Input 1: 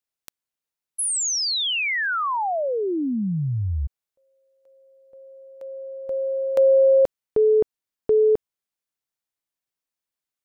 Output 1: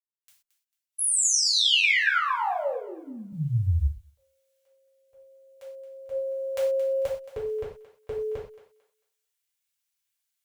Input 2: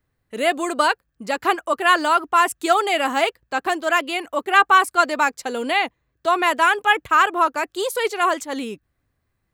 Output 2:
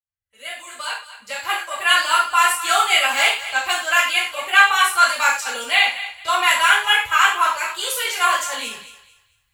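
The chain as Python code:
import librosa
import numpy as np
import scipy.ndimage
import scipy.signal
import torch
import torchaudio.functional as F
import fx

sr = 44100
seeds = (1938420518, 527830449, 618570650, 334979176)

p1 = fx.fade_in_head(x, sr, length_s=2.4)
p2 = fx.tone_stack(p1, sr, knobs='10-0-10')
p3 = fx.level_steps(p2, sr, step_db=14)
p4 = p2 + (p3 * librosa.db_to_amplitude(3.0))
p5 = fx.quant_float(p4, sr, bits=6)
p6 = p5 + fx.echo_thinned(p5, sr, ms=223, feedback_pct=29, hz=650.0, wet_db=-13.0, dry=0)
p7 = fx.rev_gated(p6, sr, seeds[0], gate_ms=150, shape='falling', drr_db=-7.0)
y = p7 * librosa.db_to_amplitude(-3.0)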